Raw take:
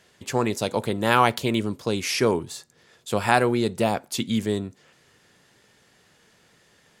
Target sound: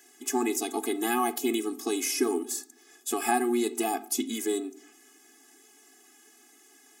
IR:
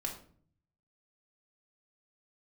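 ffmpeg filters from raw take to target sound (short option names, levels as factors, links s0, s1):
-filter_complex "[0:a]lowshelf=f=130:t=q:w=3:g=-7.5,aexciter=amount=3.7:drive=7.1:freq=5700,acrossover=split=710|7700[s0][s1][s2];[s0]acompressor=threshold=0.0631:ratio=4[s3];[s1]acompressor=threshold=0.0316:ratio=4[s4];[s2]acompressor=threshold=0.0316:ratio=4[s5];[s3][s4][s5]amix=inputs=3:normalize=0,asplit=2[s6][s7];[1:a]atrim=start_sample=2205,lowpass=4400[s8];[s7][s8]afir=irnorm=-1:irlink=0,volume=0.398[s9];[s6][s9]amix=inputs=2:normalize=0,afftfilt=real='re*eq(mod(floor(b*sr/1024/220),2),1)':imag='im*eq(mod(floor(b*sr/1024/220),2),1)':win_size=1024:overlap=0.75"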